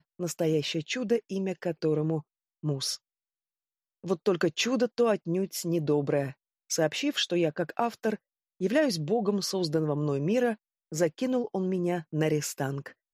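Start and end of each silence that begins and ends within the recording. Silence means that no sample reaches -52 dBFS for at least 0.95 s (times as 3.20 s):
2.97–4.04 s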